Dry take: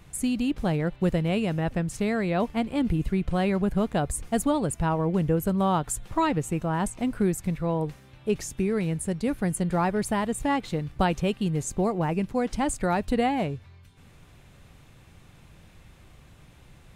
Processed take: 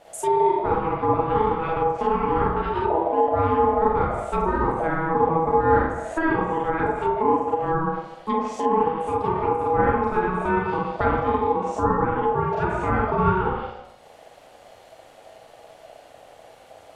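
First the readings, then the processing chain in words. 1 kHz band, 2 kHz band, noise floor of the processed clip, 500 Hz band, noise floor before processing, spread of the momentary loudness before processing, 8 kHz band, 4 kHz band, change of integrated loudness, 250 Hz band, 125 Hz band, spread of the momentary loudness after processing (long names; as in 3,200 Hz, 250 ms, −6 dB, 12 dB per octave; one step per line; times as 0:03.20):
+10.0 dB, +5.5 dB, −50 dBFS, +6.5 dB, −53 dBFS, 4 LU, below −10 dB, can't be measured, +4.0 dB, −2.0 dB, −1.5 dB, 5 LU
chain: four-comb reverb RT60 0.82 s, combs from 32 ms, DRR −4.5 dB
ring modulation 650 Hz
treble cut that deepens with the level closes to 1,400 Hz, closed at −19.5 dBFS
level +1.5 dB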